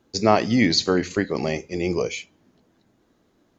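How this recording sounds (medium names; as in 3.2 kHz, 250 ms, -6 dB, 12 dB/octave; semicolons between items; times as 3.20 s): noise floor -65 dBFS; spectral tilt -4.5 dB/octave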